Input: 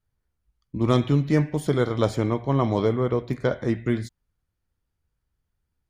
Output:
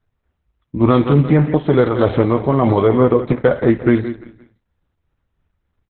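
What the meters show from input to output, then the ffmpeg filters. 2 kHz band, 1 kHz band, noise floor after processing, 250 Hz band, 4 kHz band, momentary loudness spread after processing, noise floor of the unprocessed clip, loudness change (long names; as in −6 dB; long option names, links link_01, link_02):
+8.0 dB, +9.0 dB, −74 dBFS, +9.0 dB, +2.5 dB, 5 LU, −79 dBFS, +9.0 dB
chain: -filter_complex "[0:a]lowpass=frequency=1400:poles=1,lowshelf=frequency=450:gain=-6.5,tremolo=f=3.3:d=0.45,asplit=2[link_01][link_02];[link_02]adelay=12,volume=-11dB[link_03];[link_01][link_03]amix=inputs=2:normalize=0,asplit=2[link_04][link_05];[link_05]aecho=0:1:172|344|516:0.211|0.0719|0.0244[link_06];[link_04][link_06]amix=inputs=2:normalize=0,alimiter=level_in=18.5dB:limit=-1dB:release=50:level=0:latency=1,volume=-1dB" -ar 48000 -c:a libopus -b:a 8k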